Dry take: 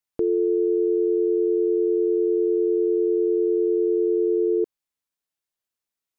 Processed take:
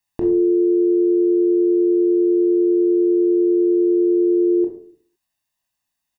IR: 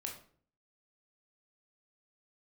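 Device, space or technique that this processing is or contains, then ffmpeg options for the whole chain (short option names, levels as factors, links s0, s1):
microphone above a desk: -filter_complex "[0:a]aecho=1:1:1.1:0.79[s0];[1:a]atrim=start_sample=2205[s1];[s0][s1]afir=irnorm=-1:irlink=0,volume=2.66"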